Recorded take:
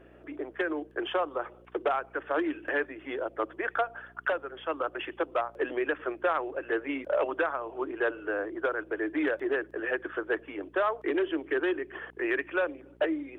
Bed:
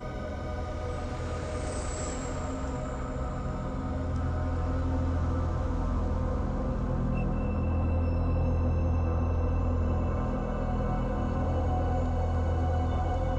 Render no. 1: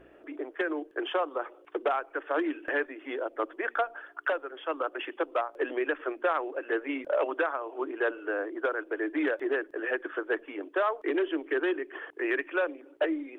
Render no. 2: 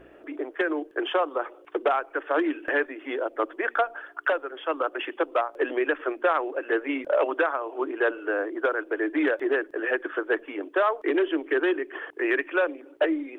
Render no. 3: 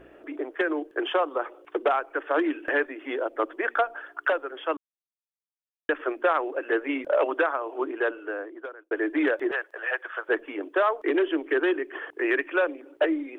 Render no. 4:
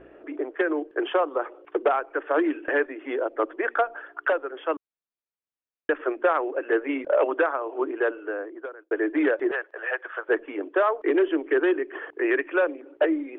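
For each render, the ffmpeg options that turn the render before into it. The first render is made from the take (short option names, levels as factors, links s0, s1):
-af "bandreject=f=60:t=h:w=4,bandreject=f=120:t=h:w=4,bandreject=f=180:t=h:w=4,bandreject=f=240:t=h:w=4"
-af "volume=1.68"
-filter_complex "[0:a]asettb=1/sr,asplit=3[s0][s1][s2];[s0]atrim=end=9.514[s3];[s1]atrim=start=9.51:end=10.29,asetpts=PTS-STARTPTS,afade=t=in:d=0.004:c=qsin,afade=t=out:st=0.776:d=0.004:c=qsin,highpass=f=610:w=0.5412,highpass=f=610:w=1.3066[s4];[s2]atrim=start=10.286[s5];[s3][s4]acrossfade=d=0.004:c1=hsin:c2=qsin[s6];[s6][s5]acrossfade=d=0.004:c1=qsin:c2=hsin,asplit=4[s7][s8][s9][s10];[s7]atrim=end=4.77,asetpts=PTS-STARTPTS,afade=t=out:st=4.766:d=0.004:c=hsin[s11];[s8]atrim=start=4.77:end=5.89,asetpts=PTS-STARTPTS,volume=0[s12];[s9]atrim=start=5.89:end=8.91,asetpts=PTS-STARTPTS,afade=t=in:d=0.004:c=hsin,afade=t=out:st=1.91:d=1.11[s13];[s10]atrim=start=8.91,asetpts=PTS-STARTPTS,afade=t=in:d=0.004:c=hsin[s14];[s11][s12][s13][s14]concat=n=4:v=0:a=1"
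-af "lowpass=2800,equalizer=f=430:w=1.5:g=3"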